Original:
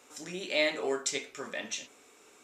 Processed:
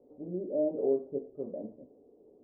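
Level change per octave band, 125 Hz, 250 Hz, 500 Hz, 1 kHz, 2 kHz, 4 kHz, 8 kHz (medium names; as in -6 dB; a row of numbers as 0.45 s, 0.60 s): +4.5 dB, +4.5 dB, +2.5 dB, -10.5 dB, under -40 dB, under -40 dB, under -40 dB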